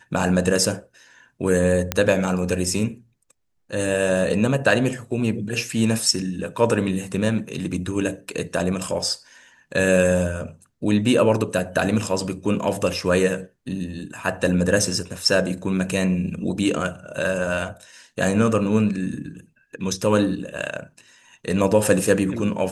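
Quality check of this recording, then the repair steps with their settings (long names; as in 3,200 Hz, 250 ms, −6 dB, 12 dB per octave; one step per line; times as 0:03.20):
0:01.92: click −5 dBFS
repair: click removal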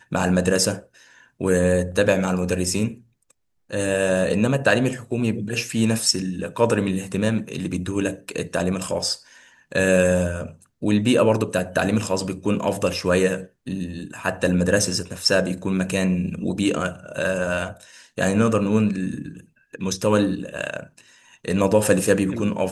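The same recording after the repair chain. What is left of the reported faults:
none of them is left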